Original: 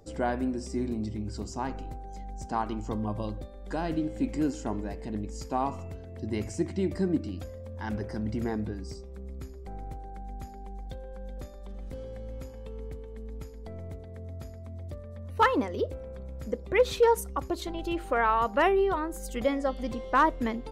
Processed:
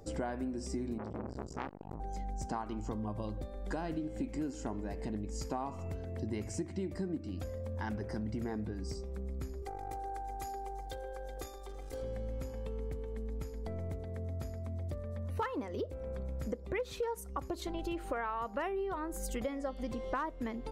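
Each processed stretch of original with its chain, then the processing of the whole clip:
0.98–2.00 s: treble shelf 2.2 kHz -9 dB + transformer saturation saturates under 1.4 kHz
9.62–12.02 s: tone controls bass -12 dB, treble +6 dB + comb 2.5 ms, depth 81% + transformer saturation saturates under 150 Hz
whole clip: peaking EQ 3.5 kHz -2.5 dB; compression 6:1, threshold -37 dBFS; trim +2.5 dB

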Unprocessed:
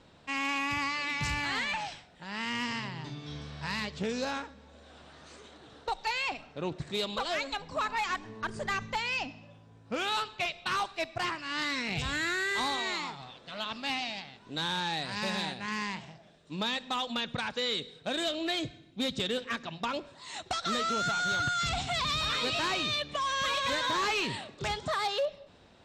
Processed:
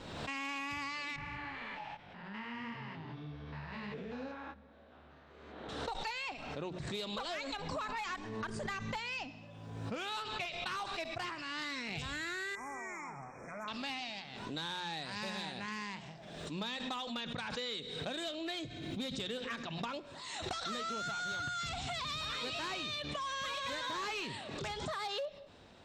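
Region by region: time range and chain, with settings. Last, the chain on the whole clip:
1.16–5.69 s: spectrogram pixelated in time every 200 ms + low-pass 2.2 kHz + detune thickener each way 38 cents
12.55–13.68 s: brick-wall FIR band-stop 2.5–5.3 kHz + compression 2:1, threshold -42 dBFS
whole clip: compression 2.5:1, threshold -41 dBFS; hum notches 60/120/180 Hz; swell ahead of each attack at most 38 dB/s

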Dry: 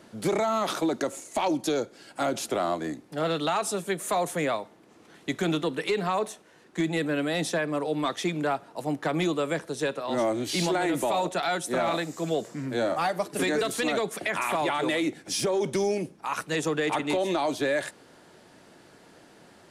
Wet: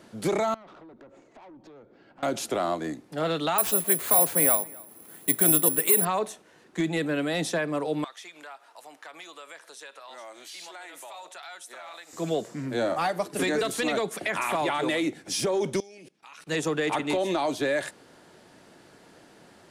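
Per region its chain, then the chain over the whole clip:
0.54–2.23 s: tape spacing loss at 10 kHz 42 dB + compression, threshold -42 dBFS + valve stage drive 45 dB, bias 0.25
3.58–6.05 s: treble shelf 4.6 kHz -6.5 dB + careless resampling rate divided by 4×, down none, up zero stuff + delay 264 ms -23.5 dB
8.04–12.13 s: high-pass 950 Hz + compression 2.5:1, threshold -45 dBFS
15.80–16.47 s: frequency weighting D + level held to a coarse grid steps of 24 dB
whole clip: none

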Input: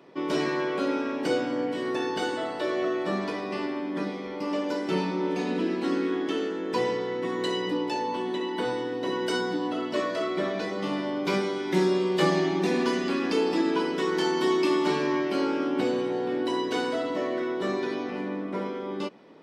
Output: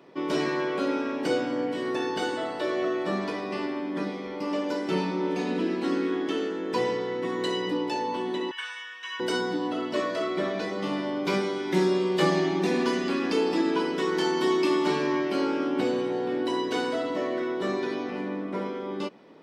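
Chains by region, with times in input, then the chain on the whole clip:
8.51–9.20 s: resonant high-pass 1.9 kHz, resonance Q 12 + static phaser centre 2.9 kHz, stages 8 + comb 1.8 ms, depth 57%
whole clip: none

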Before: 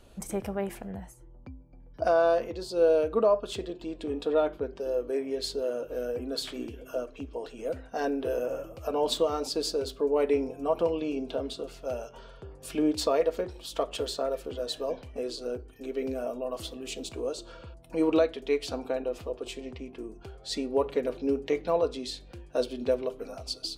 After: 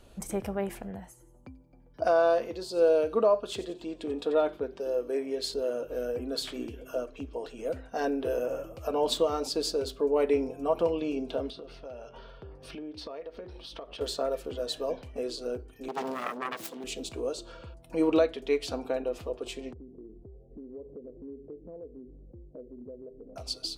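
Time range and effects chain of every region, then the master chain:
0.90–5.54 s: bass shelf 90 Hz -10.5 dB + feedback echo behind a high-pass 89 ms, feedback 42%, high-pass 3.8 kHz, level -12.5 dB
11.50–14.01 s: Savitzky-Golay filter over 15 samples + compression 4:1, threshold -40 dBFS
15.88–16.84 s: self-modulated delay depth 0.84 ms + high-pass 160 Hz 24 dB/octave
19.73–23.36 s: inverse Chebyshev low-pass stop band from 2.8 kHz, stop band 80 dB + compression 3:1, threshold -45 dBFS
whole clip: none

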